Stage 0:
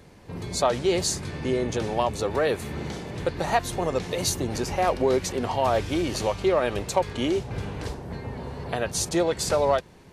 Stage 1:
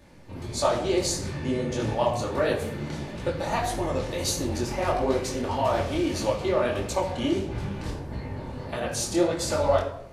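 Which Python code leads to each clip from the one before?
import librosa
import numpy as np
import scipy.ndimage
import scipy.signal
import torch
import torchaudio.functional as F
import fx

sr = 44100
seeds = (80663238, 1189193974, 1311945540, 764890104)

y = fx.room_shoebox(x, sr, seeds[0], volume_m3=2100.0, walls='furnished', distance_m=2.5)
y = fx.detune_double(y, sr, cents=55)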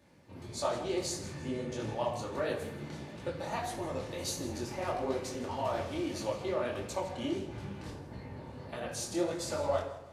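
y = scipy.signal.sosfilt(scipy.signal.butter(2, 85.0, 'highpass', fs=sr, output='sos'), x)
y = fx.echo_feedback(y, sr, ms=161, feedback_pct=41, wet_db=-15.5)
y = y * 10.0 ** (-9.0 / 20.0)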